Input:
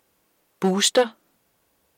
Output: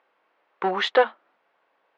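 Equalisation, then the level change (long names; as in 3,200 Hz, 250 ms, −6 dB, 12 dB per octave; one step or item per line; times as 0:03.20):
band-pass filter 680–2,300 Hz
high-frequency loss of the air 180 metres
+6.5 dB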